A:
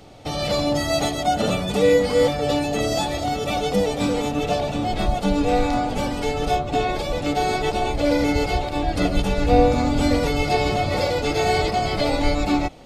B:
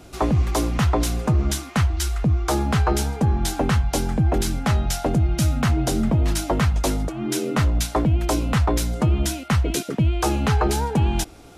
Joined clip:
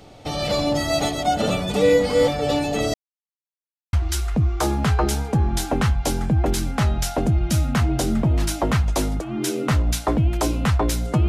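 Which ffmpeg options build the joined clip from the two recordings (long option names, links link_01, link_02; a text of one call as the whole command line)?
ffmpeg -i cue0.wav -i cue1.wav -filter_complex "[0:a]apad=whole_dur=11.28,atrim=end=11.28,asplit=2[link_01][link_02];[link_01]atrim=end=2.94,asetpts=PTS-STARTPTS,afade=type=out:start_time=2.936:duration=0.004:curve=hsin[link_03];[link_02]atrim=start=2.94:end=3.93,asetpts=PTS-STARTPTS,volume=0[link_04];[1:a]atrim=start=1.81:end=9.16,asetpts=PTS-STARTPTS,afade=type=in:duration=0.004:curve=hsin[link_05];[link_03][link_04][link_05]concat=n=3:v=0:a=1" out.wav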